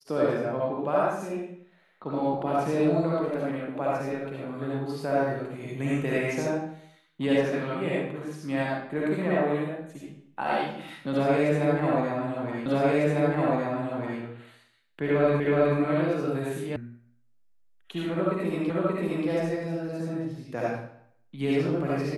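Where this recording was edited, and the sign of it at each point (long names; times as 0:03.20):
0:12.66: the same again, the last 1.55 s
0:15.40: the same again, the last 0.37 s
0:16.76: cut off before it has died away
0:18.70: the same again, the last 0.58 s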